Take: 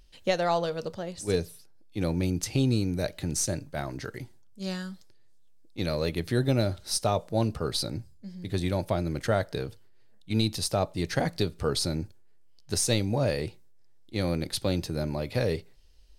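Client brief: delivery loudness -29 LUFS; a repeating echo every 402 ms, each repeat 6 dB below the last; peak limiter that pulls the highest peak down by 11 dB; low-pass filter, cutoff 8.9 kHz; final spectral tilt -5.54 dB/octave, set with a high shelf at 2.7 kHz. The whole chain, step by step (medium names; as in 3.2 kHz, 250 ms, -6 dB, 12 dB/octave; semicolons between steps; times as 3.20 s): low-pass 8.9 kHz; treble shelf 2.7 kHz -7 dB; peak limiter -24 dBFS; feedback delay 402 ms, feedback 50%, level -6 dB; trim +6 dB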